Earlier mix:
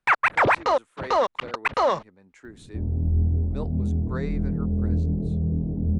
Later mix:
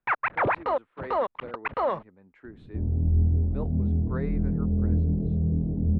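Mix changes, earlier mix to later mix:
first sound −3.0 dB
master: add high-frequency loss of the air 480 metres

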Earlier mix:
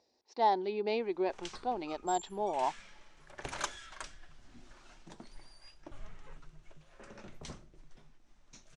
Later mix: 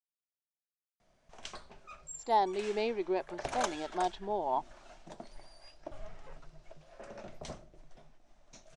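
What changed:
speech: entry +1.90 s
background: add parametric band 650 Hz +12.5 dB 0.56 octaves

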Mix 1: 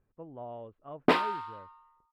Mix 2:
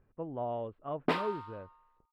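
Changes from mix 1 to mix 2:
speech +6.5 dB
background −6.5 dB

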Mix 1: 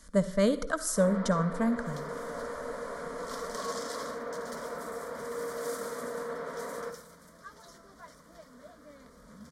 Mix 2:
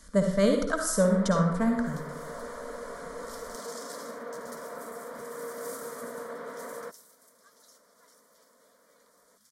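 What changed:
speech: send +11.5 dB
first sound: send off
second sound: add first-order pre-emphasis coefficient 0.97

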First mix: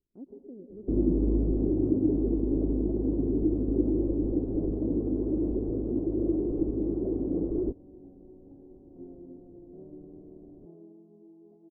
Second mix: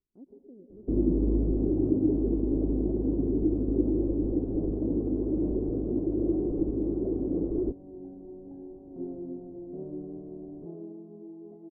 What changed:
speech −5.0 dB
second sound +9.0 dB

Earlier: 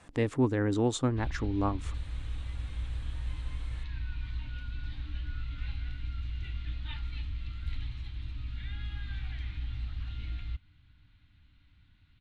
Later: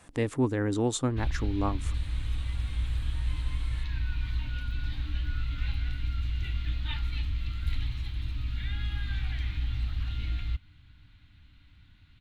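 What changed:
background +5.5 dB
master: remove high-frequency loss of the air 53 metres

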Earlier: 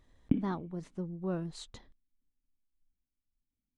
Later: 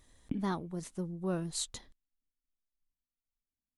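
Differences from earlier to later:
background −9.5 dB
master: remove head-to-tape spacing loss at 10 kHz 20 dB

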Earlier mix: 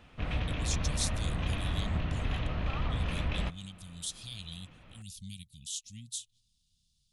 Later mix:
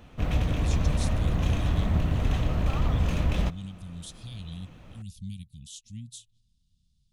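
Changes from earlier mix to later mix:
background: remove high-frequency loss of the air 310 metres
master: add tilt shelving filter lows +7.5 dB, about 1,400 Hz

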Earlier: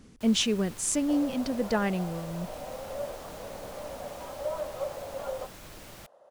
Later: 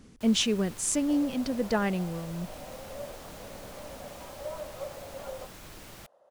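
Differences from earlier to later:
second sound −4.0 dB
reverb: off

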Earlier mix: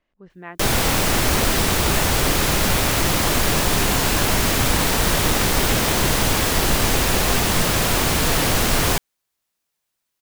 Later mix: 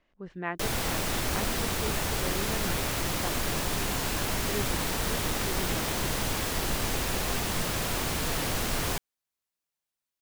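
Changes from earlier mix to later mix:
speech +3.5 dB
background −11.0 dB

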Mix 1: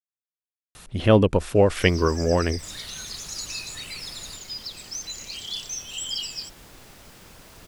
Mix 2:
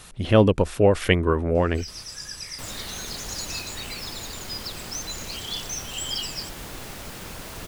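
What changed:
speech: entry −0.75 s
second sound +10.5 dB

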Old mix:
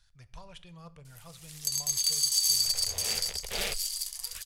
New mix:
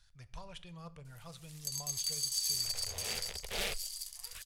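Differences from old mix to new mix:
first sound −8.5 dB
second sound −3.0 dB

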